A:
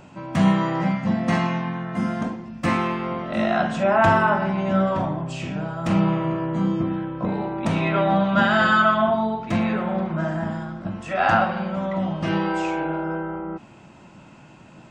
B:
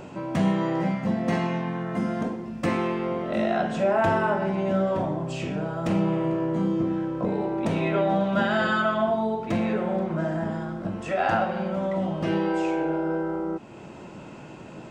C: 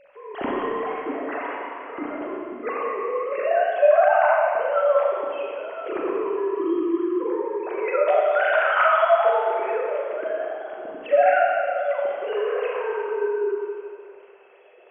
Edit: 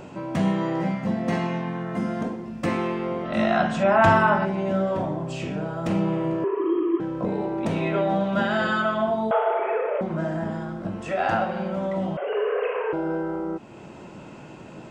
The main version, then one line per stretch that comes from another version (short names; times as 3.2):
B
3.25–4.45 from A
6.44–7 from C
9.31–10.01 from C
12.17–12.93 from C